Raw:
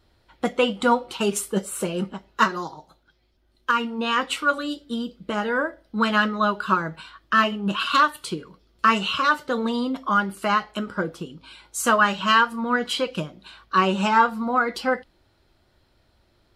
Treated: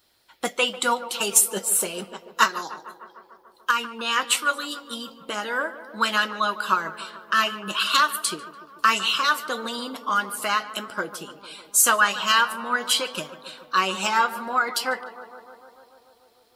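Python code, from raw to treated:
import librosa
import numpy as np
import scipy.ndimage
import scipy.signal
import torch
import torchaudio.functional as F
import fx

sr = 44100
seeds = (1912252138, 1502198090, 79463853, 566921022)

y = fx.riaa(x, sr, side='recording')
y = fx.echo_tape(y, sr, ms=149, feedback_pct=84, wet_db=-13.0, lp_hz=1800.0, drive_db=4.0, wow_cents=35)
y = fx.hpss(y, sr, part='percussive', gain_db=4)
y = y * librosa.db_to_amplitude(-4.0)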